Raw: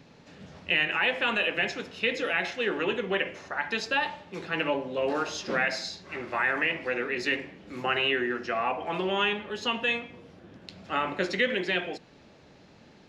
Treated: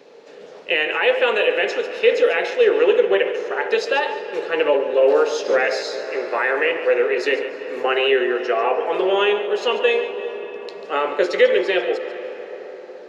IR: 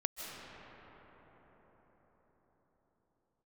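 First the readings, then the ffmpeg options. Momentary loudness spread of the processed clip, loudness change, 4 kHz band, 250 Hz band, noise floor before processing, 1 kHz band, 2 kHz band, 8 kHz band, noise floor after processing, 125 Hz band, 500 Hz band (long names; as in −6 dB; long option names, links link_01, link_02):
12 LU, +9.0 dB, +4.5 dB, +5.5 dB, −55 dBFS, +7.0 dB, +5.0 dB, can't be measured, −40 dBFS, below −10 dB, +15.0 dB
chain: -filter_complex "[0:a]highpass=frequency=450:width_type=q:width=4.9,asplit=2[link_01][link_02];[1:a]atrim=start_sample=2205,adelay=142[link_03];[link_02][link_03]afir=irnorm=-1:irlink=0,volume=-11.5dB[link_04];[link_01][link_04]amix=inputs=2:normalize=0,volume=4dB"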